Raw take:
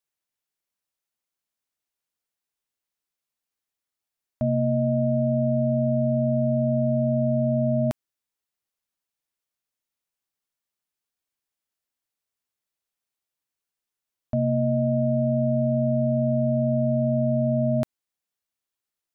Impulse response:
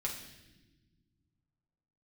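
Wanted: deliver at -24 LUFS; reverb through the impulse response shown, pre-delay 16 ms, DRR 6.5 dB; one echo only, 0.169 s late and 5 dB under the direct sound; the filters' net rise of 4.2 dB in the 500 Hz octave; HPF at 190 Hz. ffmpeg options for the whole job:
-filter_complex "[0:a]highpass=190,equalizer=f=500:t=o:g=6,aecho=1:1:169:0.562,asplit=2[a][b];[1:a]atrim=start_sample=2205,adelay=16[c];[b][c]afir=irnorm=-1:irlink=0,volume=-8.5dB[d];[a][d]amix=inputs=2:normalize=0,volume=-6.5dB"

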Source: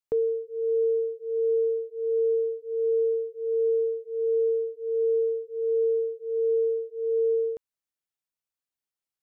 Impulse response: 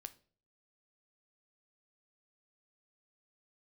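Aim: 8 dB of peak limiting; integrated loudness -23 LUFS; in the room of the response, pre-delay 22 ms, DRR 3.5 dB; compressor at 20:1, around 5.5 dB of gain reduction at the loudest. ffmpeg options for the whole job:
-filter_complex "[0:a]acompressor=threshold=-27dB:ratio=20,alimiter=level_in=4dB:limit=-24dB:level=0:latency=1,volume=-4dB,asplit=2[a][b];[1:a]atrim=start_sample=2205,adelay=22[c];[b][c]afir=irnorm=-1:irlink=0,volume=2dB[d];[a][d]amix=inputs=2:normalize=0,volume=4.5dB"

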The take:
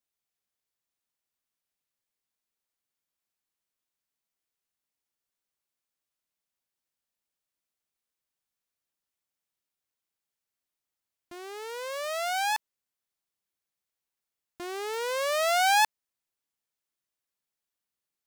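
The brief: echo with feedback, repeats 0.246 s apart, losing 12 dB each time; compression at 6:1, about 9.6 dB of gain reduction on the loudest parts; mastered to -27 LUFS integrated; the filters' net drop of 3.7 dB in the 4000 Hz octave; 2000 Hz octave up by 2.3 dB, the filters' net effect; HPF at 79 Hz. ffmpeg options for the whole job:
-af "highpass=79,equalizer=f=2k:t=o:g=4.5,equalizer=f=4k:t=o:g=-6.5,acompressor=threshold=-29dB:ratio=6,aecho=1:1:246|492|738:0.251|0.0628|0.0157,volume=6.5dB"

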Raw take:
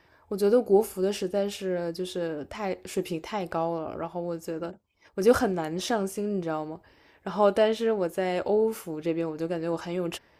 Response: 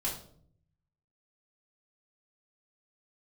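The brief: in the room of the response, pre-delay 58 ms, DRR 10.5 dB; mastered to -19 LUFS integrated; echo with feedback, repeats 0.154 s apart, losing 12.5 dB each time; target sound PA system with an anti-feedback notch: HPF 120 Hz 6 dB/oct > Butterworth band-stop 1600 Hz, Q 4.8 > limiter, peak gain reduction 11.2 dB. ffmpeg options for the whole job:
-filter_complex "[0:a]aecho=1:1:154|308|462:0.237|0.0569|0.0137,asplit=2[a][b];[1:a]atrim=start_sample=2205,adelay=58[c];[b][c]afir=irnorm=-1:irlink=0,volume=-14.5dB[d];[a][d]amix=inputs=2:normalize=0,highpass=f=120:p=1,asuperstop=centerf=1600:order=8:qfactor=4.8,volume=11.5dB,alimiter=limit=-8dB:level=0:latency=1"

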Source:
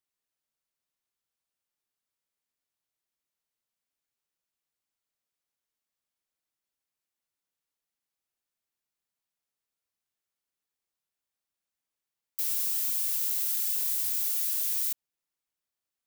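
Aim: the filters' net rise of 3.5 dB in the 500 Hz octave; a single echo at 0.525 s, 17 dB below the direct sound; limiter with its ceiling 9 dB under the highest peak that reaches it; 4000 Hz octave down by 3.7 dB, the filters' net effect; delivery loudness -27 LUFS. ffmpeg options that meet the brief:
-af "equalizer=f=500:t=o:g=4.5,equalizer=f=4k:t=o:g=-5,alimiter=level_in=1.5dB:limit=-24dB:level=0:latency=1,volume=-1.5dB,aecho=1:1:525:0.141,volume=5dB"

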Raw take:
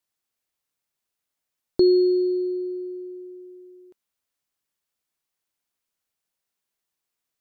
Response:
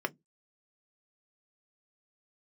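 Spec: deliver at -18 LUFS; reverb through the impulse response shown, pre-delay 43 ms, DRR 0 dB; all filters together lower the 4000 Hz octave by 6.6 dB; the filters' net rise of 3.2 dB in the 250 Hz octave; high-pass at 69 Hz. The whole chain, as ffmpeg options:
-filter_complex "[0:a]highpass=69,equalizer=f=250:t=o:g=7,equalizer=f=4k:t=o:g=-7,asplit=2[a][b];[1:a]atrim=start_sample=2205,adelay=43[c];[b][c]afir=irnorm=-1:irlink=0,volume=-6dB[d];[a][d]amix=inputs=2:normalize=0,volume=2dB"

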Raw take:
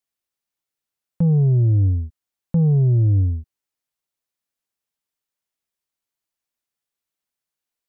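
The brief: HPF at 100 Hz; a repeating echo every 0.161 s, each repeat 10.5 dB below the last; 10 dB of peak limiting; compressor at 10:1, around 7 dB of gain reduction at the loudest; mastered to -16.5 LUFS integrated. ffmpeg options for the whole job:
-af "highpass=100,acompressor=threshold=-21dB:ratio=10,alimiter=limit=-23dB:level=0:latency=1,aecho=1:1:161|322|483:0.299|0.0896|0.0269,volume=13.5dB"

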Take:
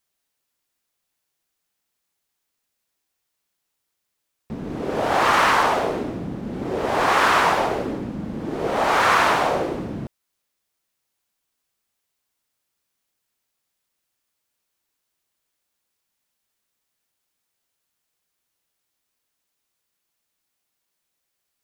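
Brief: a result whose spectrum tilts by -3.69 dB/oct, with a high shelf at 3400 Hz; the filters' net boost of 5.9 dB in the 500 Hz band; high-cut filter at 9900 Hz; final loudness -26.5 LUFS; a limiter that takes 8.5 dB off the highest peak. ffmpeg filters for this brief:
-af "lowpass=9.9k,equalizer=f=500:t=o:g=7.5,highshelf=f=3.4k:g=-4,volume=-5dB,alimiter=limit=-16.5dB:level=0:latency=1"

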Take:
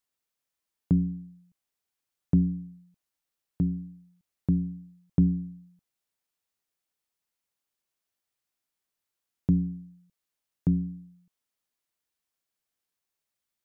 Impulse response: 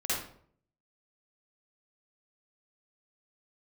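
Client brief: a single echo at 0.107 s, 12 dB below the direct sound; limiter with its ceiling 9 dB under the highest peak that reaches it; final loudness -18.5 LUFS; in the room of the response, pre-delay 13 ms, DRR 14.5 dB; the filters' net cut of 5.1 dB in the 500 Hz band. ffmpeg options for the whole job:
-filter_complex "[0:a]equalizer=f=500:t=o:g=-8,alimiter=limit=-22dB:level=0:latency=1,aecho=1:1:107:0.251,asplit=2[a][b];[1:a]atrim=start_sample=2205,adelay=13[c];[b][c]afir=irnorm=-1:irlink=0,volume=-22dB[d];[a][d]amix=inputs=2:normalize=0,volume=13dB"

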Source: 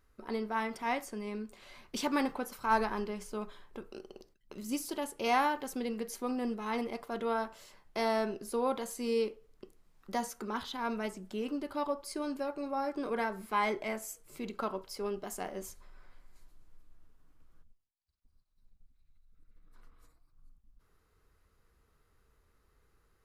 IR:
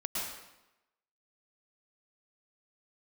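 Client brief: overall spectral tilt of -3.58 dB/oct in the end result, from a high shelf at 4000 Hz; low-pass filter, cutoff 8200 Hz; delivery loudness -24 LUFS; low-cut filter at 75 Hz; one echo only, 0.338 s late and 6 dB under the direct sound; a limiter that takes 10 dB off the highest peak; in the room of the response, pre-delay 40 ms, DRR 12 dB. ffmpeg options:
-filter_complex "[0:a]highpass=75,lowpass=8.2k,highshelf=f=4k:g=-5.5,alimiter=level_in=1.5dB:limit=-24dB:level=0:latency=1,volume=-1.5dB,aecho=1:1:338:0.501,asplit=2[a][b];[1:a]atrim=start_sample=2205,adelay=40[c];[b][c]afir=irnorm=-1:irlink=0,volume=-16.5dB[d];[a][d]amix=inputs=2:normalize=0,volume=12.5dB"

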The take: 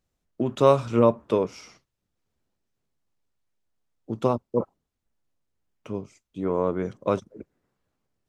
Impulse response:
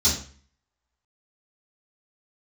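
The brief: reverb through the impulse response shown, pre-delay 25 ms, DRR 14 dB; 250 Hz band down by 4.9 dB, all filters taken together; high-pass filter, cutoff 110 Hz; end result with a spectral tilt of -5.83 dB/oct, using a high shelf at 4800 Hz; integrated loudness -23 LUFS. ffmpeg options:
-filter_complex "[0:a]highpass=110,equalizer=f=250:t=o:g=-6,highshelf=f=4.8k:g=-5.5,asplit=2[a][b];[1:a]atrim=start_sample=2205,adelay=25[c];[b][c]afir=irnorm=-1:irlink=0,volume=-26dB[d];[a][d]amix=inputs=2:normalize=0,volume=3dB"

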